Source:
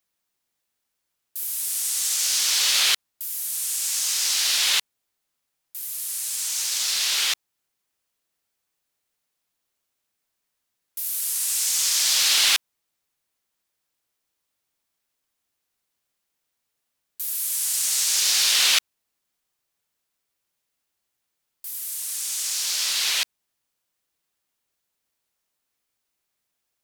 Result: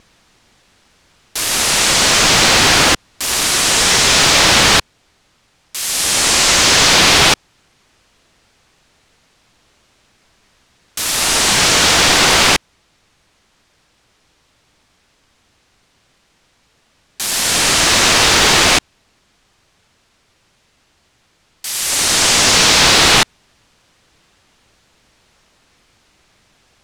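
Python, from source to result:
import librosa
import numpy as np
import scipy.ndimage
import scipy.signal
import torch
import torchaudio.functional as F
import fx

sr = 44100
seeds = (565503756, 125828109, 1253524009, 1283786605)

p1 = fx.low_shelf(x, sr, hz=190.0, db=9.0)
p2 = fx.rider(p1, sr, range_db=10, speed_s=0.5)
p3 = p1 + (p2 * librosa.db_to_amplitude(1.0))
p4 = fx.vibrato(p3, sr, rate_hz=1.1, depth_cents=17.0)
p5 = fx.fold_sine(p4, sr, drive_db=19, ceiling_db=-0.5)
p6 = fx.air_absorb(p5, sr, metres=89.0)
y = p6 * librosa.db_to_amplitude(-1.0)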